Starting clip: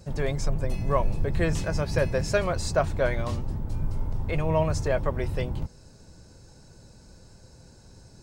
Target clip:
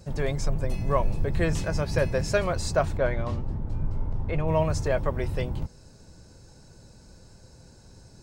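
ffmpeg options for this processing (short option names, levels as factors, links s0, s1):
-filter_complex "[0:a]asettb=1/sr,asplit=3[s0][s1][s2];[s0]atrim=end=2.974[s3];[s1]atrim=start=2.97:end=4.48,asetpts=PTS-STARTPTS,afade=t=in:d=0.004:c=qsin,afade=t=out:st=1.506:d=0.004:c=qsin,aemphasis=mode=reproduction:type=75kf[s4];[s2]atrim=start=4.476[s5];[s3][s4]acrossfade=d=0.004:c1=hsin:c2=qsin[s6];[s6][s5]acrossfade=d=0.004:c1=qsin:c2=hsin"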